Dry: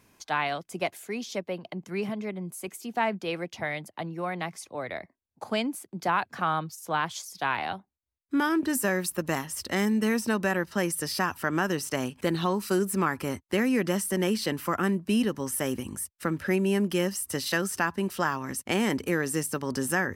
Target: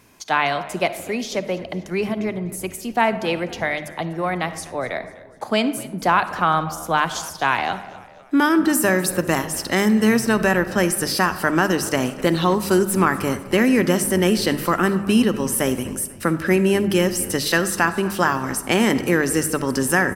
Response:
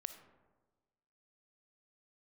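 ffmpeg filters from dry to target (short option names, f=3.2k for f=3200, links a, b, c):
-filter_complex "[0:a]bandreject=f=50:t=h:w=6,bandreject=f=100:t=h:w=6,bandreject=f=150:t=h:w=6,bandreject=f=200:t=h:w=6,asplit=5[a][b][c][d][e];[b]adelay=248,afreqshift=-86,volume=-19.5dB[f];[c]adelay=496,afreqshift=-172,volume=-25.9dB[g];[d]adelay=744,afreqshift=-258,volume=-32.3dB[h];[e]adelay=992,afreqshift=-344,volume=-38.6dB[i];[a][f][g][h][i]amix=inputs=5:normalize=0,asplit=2[j][k];[1:a]atrim=start_sample=2205[l];[k][l]afir=irnorm=-1:irlink=0,volume=11dB[m];[j][m]amix=inputs=2:normalize=0,volume=-2dB"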